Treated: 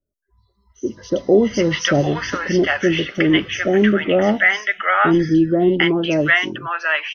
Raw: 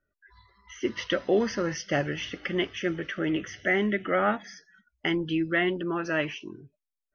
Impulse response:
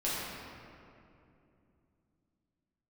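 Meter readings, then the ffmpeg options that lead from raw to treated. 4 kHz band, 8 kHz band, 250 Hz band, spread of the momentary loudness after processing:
+11.0 dB, no reading, +12.0 dB, 8 LU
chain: -filter_complex "[0:a]acrossover=split=760|4800[s0][s1][s2];[s2]adelay=60[s3];[s1]adelay=750[s4];[s0][s4][s3]amix=inputs=3:normalize=0,dynaudnorm=f=420:g=5:m=5.62"

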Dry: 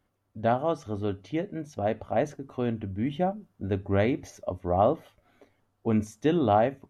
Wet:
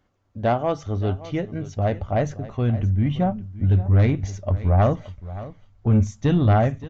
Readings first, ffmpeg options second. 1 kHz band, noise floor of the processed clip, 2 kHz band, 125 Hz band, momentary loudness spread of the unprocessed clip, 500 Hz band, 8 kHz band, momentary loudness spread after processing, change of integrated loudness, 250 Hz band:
+1.5 dB, -56 dBFS, +3.0 dB, +14.0 dB, 9 LU, +1.0 dB, no reading, 11 LU, +6.0 dB, +4.5 dB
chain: -af "asubboost=boost=9:cutoff=120,aresample=16000,asoftclip=type=tanh:threshold=0.15,aresample=44100,aecho=1:1:572:0.158,volume=1.88"

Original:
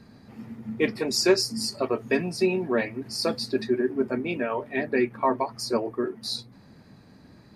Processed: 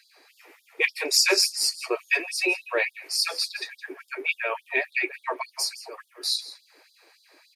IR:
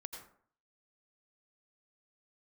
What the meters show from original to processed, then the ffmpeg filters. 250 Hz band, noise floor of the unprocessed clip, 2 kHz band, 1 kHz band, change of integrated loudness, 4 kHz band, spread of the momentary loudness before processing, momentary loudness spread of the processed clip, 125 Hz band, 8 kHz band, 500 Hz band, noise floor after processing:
-13.0 dB, -53 dBFS, +7.0 dB, -4.0 dB, +1.5 dB, +5.5 dB, 9 LU, 15 LU, under -40 dB, +7.5 dB, -7.0 dB, -64 dBFS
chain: -filter_complex "[0:a]highshelf=f=4800:g=10,aeval=exprs='0.473*(cos(1*acos(clip(val(0)/0.473,-1,1)))-cos(1*PI/2))+0.0335*(cos(2*acos(clip(val(0)/0.473,-1,1)))-cos(2*PI/2))':c=same,equalizer=f=2400:w=2.7:g=9,asplit=2[s0][s1];[s1]aecho=0:1:166:0.158[s2];[s0][s2]amix=inputs=2:normalize=0,afftfilt=real='re*gte(b*sr/1024,290*pow(3400/290,0.5+0.5*sin(2*PI*3.5*pts/sr)))':imag='im*gte(b*sr/1024,290*pow(3400/290,0.5+0.5*sin(2*PI*3.5*pts/sr)))':win_size=1024:overlap=0.75"

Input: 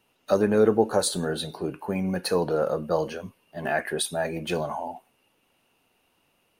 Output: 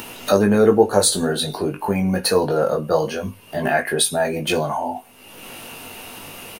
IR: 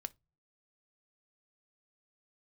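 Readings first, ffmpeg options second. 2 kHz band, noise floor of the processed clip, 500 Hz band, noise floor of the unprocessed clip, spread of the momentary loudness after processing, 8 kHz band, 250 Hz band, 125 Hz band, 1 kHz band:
+7.5 dB, -45 dBFS, +6.0 dB, -69 dBFS, 20 LU, +10.5 dB, +7.0 dB, +7.0 dB, +7.5 dB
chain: -filter_complex "[0:a]acompressor=mode=upward:threshold=0.0631:ratio=2.5,highshelf=f=5700:g=5.5,asplit=2[s0][s1];[s1]adelay=20,volume=0.562[s2];[s0][s2]amix=inputs=2:normalize=0,asplit=2[s3][s4];[1:a]atrim=start_sample=2205[s5];[s4][s5]afir=irnorm=-1:irlink=0,volume=3.16[s6];[s3][s6]amix=inputs=2:normalize=0,volume=0.562"

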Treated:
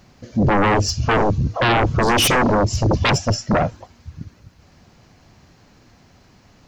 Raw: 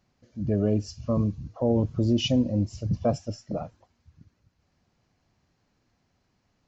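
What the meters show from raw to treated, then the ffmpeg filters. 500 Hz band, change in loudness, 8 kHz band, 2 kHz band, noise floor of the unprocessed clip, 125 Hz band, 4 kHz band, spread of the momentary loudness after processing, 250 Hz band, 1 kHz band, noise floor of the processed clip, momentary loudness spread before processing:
+8.5 dB, +9.0 dB, no reading, +27.0 dB, -73 dBFS, +7.5 dB, +12.5 dB, 5 LU, +4.5 dB, +21.0 dB, -53 dBFS, 11 LU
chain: -af "aeval=exprs='0.237*sin(PI/2*6.31*val(0)/0.237)':c=same"

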